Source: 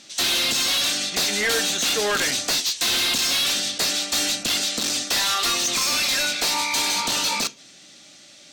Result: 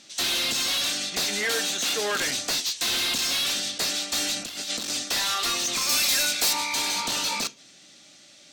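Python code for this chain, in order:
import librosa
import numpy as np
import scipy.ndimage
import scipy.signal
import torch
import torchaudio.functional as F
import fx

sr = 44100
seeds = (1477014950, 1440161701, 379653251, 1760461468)

y = fx.highpass(x, sr, hz=170.0, slope=6, at=(1.39, 2.21))
y = fx.over_compress(y, sr, threshold_db=-27.0, ratio=-0.5, at=(4.36, 4.9))
y = fx.high_shelf(y, sr, hz=7400.0, db=12.0, at=(5.89, 6.53))
y = y * 10.0 ** (-4.0 / 20.0)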